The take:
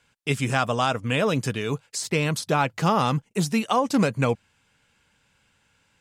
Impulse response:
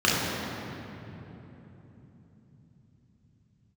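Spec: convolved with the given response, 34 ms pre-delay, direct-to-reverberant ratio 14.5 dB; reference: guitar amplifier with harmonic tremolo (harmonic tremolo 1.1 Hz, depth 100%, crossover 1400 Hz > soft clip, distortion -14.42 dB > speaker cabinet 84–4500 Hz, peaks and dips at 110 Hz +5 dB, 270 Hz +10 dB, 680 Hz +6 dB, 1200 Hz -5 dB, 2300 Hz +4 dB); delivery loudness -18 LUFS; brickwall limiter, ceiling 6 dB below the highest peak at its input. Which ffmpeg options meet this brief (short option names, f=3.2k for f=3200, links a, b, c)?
-filter_complex "[0:a]alimiter=limit=-14dB:level=0:latency=1,asplit=2[a][b];[1:a]atrim=start_sample=2205,adelay=34[c];[b][c]afir=irnorm=-1:irlink=0,volume=-33dB[d];[a][d]amix=inputs=2:normalize=0,acrossover=split=1400[e][f];[e]aeval=exprs='val(0)*(1-1/2+1/2*cos(2*PI*1.1*n/s))':c=same[g];[f]aeval=exprs='val(0)*(1-1/2-1/2*cos(2*PI*1.1*n/s))':c=same[h];[g][h]amix=inputs=2:normalize=0,asoftclip=threshold=-23dB,highpass=84,equalizer=f=110:t=q:w=4:g=5,equalizer=f=270:t=q:w=4:g=10,equalizer=f=680:t=q:w=4:g=6,equalizer=f=1.2k:t=q:w=4:g=-5,equalizer=f=2.3k:t=q:w=4:g=4,lowpass=f=4.5k:w=0.5412,lowpass=f=4.5k:w=1.3066,volume=12.5dB"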